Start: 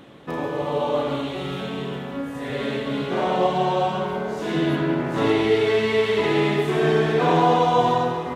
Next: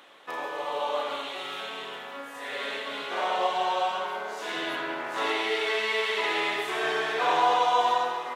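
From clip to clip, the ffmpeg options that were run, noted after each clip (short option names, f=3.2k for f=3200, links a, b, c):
-af "highpass=830"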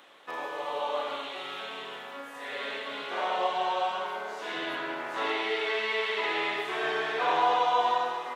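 -filter_complex "[0:a]acrossover=split=4700[a][b];[b]acompressor=threshold=-54dB:ratio=4:attack=1:release=60[c];[a][c]amix=inputs=2:normalize=0,volume=-2dB"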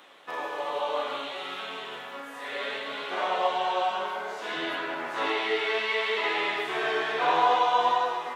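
-af "flanger=delay=9.7:depth=9.8:regen=46:speed=0.62:shape=triangular,volume=6dB"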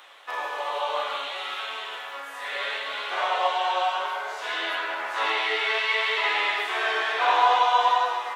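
-af "highpass=700,volume=4.5dB"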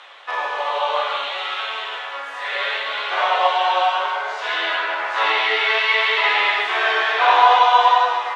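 -af "highpass=380,lowpass=5.1k,volume=7dB"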